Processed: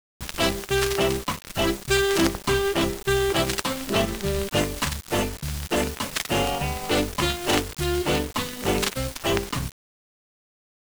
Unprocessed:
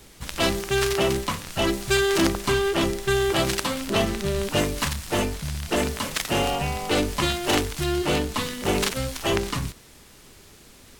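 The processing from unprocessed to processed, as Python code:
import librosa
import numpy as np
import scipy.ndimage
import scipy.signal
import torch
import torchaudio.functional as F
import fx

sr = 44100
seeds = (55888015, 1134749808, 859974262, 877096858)

y = fx.transient(x, sr, attack_db=0, sustain_db=-8)
y = fx.quant_dither(y, sr, seeds[0], bits=6, dither='none')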